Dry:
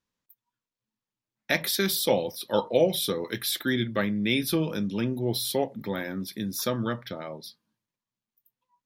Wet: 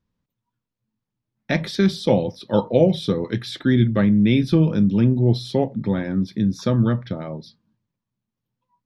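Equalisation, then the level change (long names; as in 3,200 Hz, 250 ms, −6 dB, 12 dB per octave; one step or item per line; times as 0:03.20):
bass and treble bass +10 dB, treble +14 dB
head-to-tape spacing loss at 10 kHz 38 dB
+6.0 dB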